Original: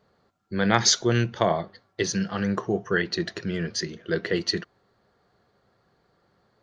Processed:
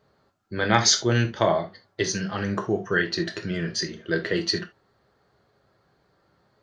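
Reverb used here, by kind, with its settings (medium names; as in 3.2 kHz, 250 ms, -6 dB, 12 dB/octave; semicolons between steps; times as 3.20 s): gated-style reverb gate 100 ms falling, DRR 4 dB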